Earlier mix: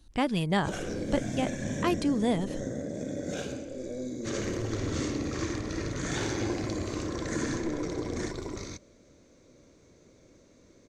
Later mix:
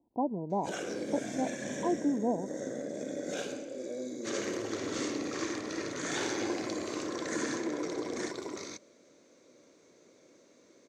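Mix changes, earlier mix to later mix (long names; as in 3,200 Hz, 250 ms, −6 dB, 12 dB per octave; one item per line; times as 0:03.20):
speech: add Chebyshev low-pass with heavy ripple 1,000 Hz, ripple 3 dB
master: add high-pass filter 290 Hz 12 dB per octave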